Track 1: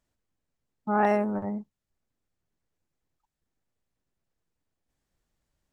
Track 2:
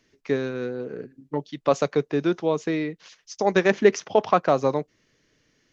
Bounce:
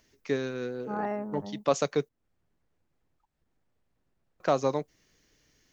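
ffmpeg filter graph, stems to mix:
ffmpeg -i stem1.wav -i stem2.wav -filter_complex "[0:a]acompressor=mode=upward:threshold=-51dB:ratio=2.5,lowpass=frequency=2200:poles=1,volume=-8.5dB[link_01];[1:a]aemphasis=mode=production:type=50fm,volume=-4.5dB,asplit=3[link_02][link_03][link_04];[link_02]atrim=end=2.09,asetpts=PTS-STARTPTS,afade=type=out:start_time=2.086:duration=0.004:curve=hsin[link_05];[link_03]atrim=start=2.09:end=4.4,asetpts=PTS-STARTPTS,volume=0[link_06];[link_04]atrim=start=4.4,asetpts=PTS-STARTPTS,afade=type=in:duration=0.004:curve=hsin[link_07];[link_05][link_06][link_07]concat=n=3:v=0:a=1[link_08];[link_01][link_08]amix=inputs=2:normalize=0" out.wav

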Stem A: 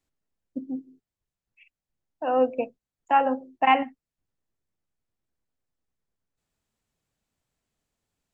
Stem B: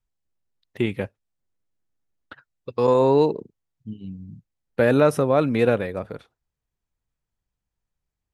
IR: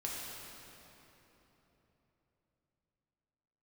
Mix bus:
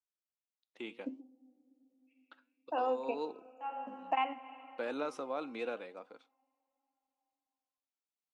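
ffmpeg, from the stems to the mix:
-filter_complex "[0:a]adelay=500,volume=0dB,asplit=2[link_01][link_02];[link_02]volume=-22dB[link_03];[1:a]flanger=delay=3.8:depth=5.5:regen=87:speed=0.65:shape=sinusoidal,volume=-8.5dB,asplit=2[link_04][link_05];[link_05]apad=whole_len=389745[link_06];[link_01][link_06]sidechaingate=range=-35dB:threshold=-56dB:ratio=16:detection=peak[link_07];[2:a]atrim=start_sample=2205[link_08];[link_03][link_08]afir=irnorm=-1:irlink=0[link_09];[link_07][link_04][link_09]amix=inputs=3:normalize=0,highpass=frequency=310:width=0.5412,highpass=frequency=310:width=1.3066,equalizer=frequency=400:width_type=q:width=4:gain=-10,equalizer=frequency=600:width_type=q:width=4:gain=-6,equalizer=frequency=1800:width_type=q:width=4:gain=-9,lowpass=frequency=7600:width=0.5412,lowpass=frequency=7600:width=1.3066,acompressor=threshold=-31dB:ratio=4"

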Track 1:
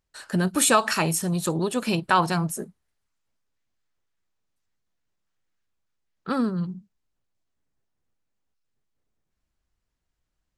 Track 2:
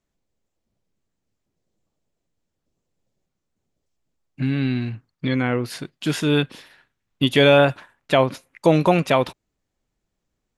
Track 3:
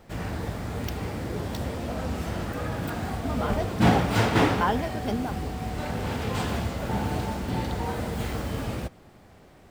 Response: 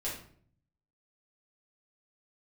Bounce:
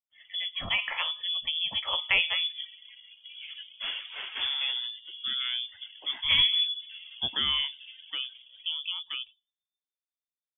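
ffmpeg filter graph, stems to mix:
-filter_complex "[0:a]bandreject=frequency=215.2:width_type=h:width=4,bandreject=frequency=430.4:width_type=h:width=4,bandreject=frequency=645.6:width_type=h:width=4,bandreject=frequency=860.8:width_type=h:width=4,bandreject=frequency=1076:width_type=h:width=4,bandreject=frequency=1291.2:width_type=h:width=4,bandreject=frequency=1506.4:width_type=h:width=4,bandreject=frequency=1721.6:width_type=h:width=4,bandreject=frequency=1936.8:width_type=h:width=4,bandreject=frequency=2152:width_type=h:width=4,bandreject=frequency=2367.2:width_type=h:width=4,bandreject=frequency=2582.4:width_type=h:width=4,dynaudnorm=framelen=120:gausssize=17:maxgain=14dB,volume=-8.5dB,asplit=2[link_01][link_02];[link_02]volume=-17dB[link_03];[1:a]highshelf=frequency=2400:gain=-11,volume=-7dB,afade=type=out:start_time=7.07:duration=0.63:silence=0.398107,asplit=2[link_04][link_05];[link_05]volume=-22dB[link_06];[2:a]highpass=frequency=190:width=0.5412,highpass=frequency=190:width=1.3066,aeval=exprs='sgn(val(0))*max(abs(val(0))-0.0112,0)':channel_layout=same,volume=-10.5dB,asplit=2[link_07][link_08];[link_08]volume=-18.5dB[link_09];[3:a]atrim=start_sample=2205[link_10];[link_03][link_06][link_09]amix=inputs=3:normalize=0[link_11];[link_11][link_10]afir=irnorm=-1:irlink=0[link_12];[link_01][link_04][link_07][link_12]amix=inputs=4:normalize=0,lowpass=frequency=3100:width_type=q:width=0.5098,lowpass=frequency=3100:width_type=q:width=0.6013,lowpass=frequency=3100:width_type=q:width=0.9,lowpass=frequency=3100:width_type=q:width=2.563,afreqshift=-3600,afftdn=noise_reduction=25:noise_floor=-45,aemphasis=mode=reproduction:type=bsi"

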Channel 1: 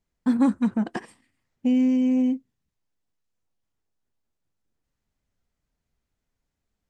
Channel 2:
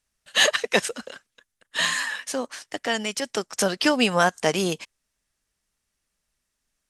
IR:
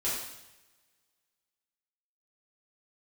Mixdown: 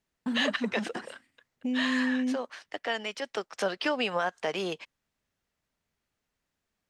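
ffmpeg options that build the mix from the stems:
-filter_complex "[0:a]alimiter=limit=-22.5dB:level=0:latency=1:release=117,highpass=frequency=390:poles=1,volume=0dB[link_01];[1:a]acrossover=split=370 4300:gain=0.178 1 0.126[link_02][link_03][link_04];[link_02][link_03][link_04]amix=inputs=3:normalize=0,volume=-4.5dB[link_05];[link_01][link_05]amix=inputs=2:normalize=0,lowshelf=frequency=220:gain=8,alimiter=limit=-17.5dB:level=0:latency=1:release=97"

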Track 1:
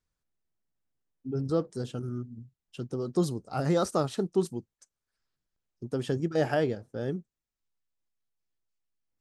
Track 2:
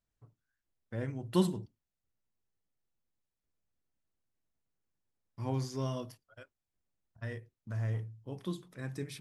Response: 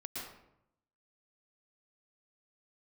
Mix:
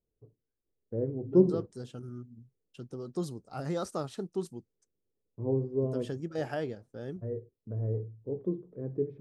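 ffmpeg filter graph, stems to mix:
-filter_complex "[0:a]agate=range=-33dB:threshold=-50dB:ratio=3:detection=peak,volume=-7.5dB[link_01];[1:a]lowpass=frequency=440:width_type=q:width=4.3,volume=0.5dB[link_02];[link_01][link_02]amix=inputs=2:normalize=0"

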